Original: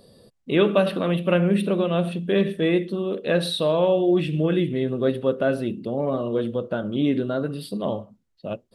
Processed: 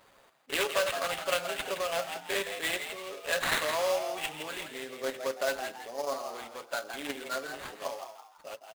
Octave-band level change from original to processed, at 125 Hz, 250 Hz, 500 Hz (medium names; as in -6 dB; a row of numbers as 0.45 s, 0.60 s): -28.0 dB, -23.5 dB, -11.5 dB